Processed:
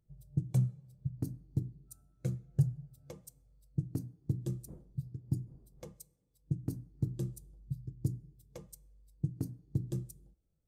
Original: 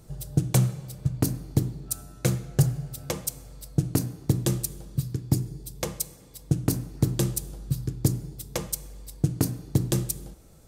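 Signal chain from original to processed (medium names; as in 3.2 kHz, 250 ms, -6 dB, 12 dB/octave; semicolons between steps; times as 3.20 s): 4.67–5.91 s: wind noise 320 Hz -36 dBFS; spectral contrast expander 1.5:1; trim -7.5 dB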